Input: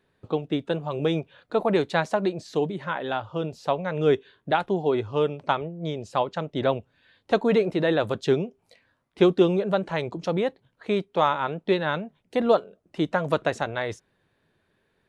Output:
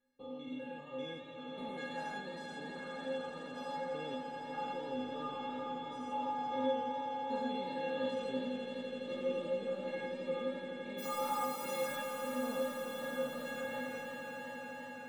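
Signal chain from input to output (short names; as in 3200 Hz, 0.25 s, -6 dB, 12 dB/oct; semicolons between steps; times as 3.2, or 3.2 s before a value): stepped spectrum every 0.2 s; 10.97–11.95 added noise white -40 dBFS; metallic resonator 250 Hz, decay 0.76 s, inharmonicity 0.03; on a send: swelling echo 84 ms, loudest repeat 8, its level -12.5 dB; on the sum: warbling echo 0.106 s, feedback 75%, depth 184 cents, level -17 dB; gain +8.5 dB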